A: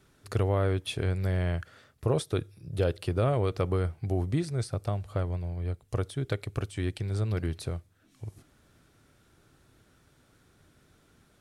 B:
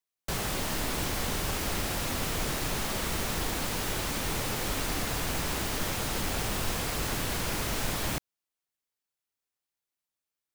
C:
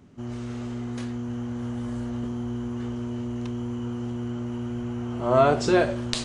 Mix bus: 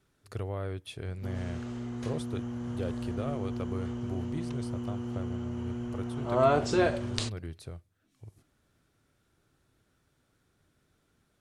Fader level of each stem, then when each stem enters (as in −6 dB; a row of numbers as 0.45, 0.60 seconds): −9.0 dB, muted, −5.0 dB; 0.00 s, muted, 1.05 s